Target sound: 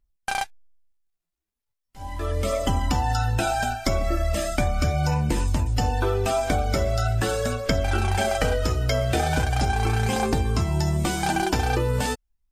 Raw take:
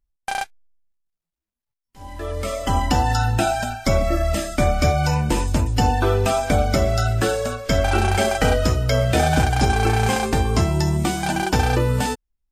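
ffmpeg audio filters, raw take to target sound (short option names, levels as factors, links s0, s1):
-af "aphaser=in_gain=1:out_gain=1:delay=3:decay=0.34:speed=0.39:type=triangular,acompressor=threshold=0.112:ratio=6"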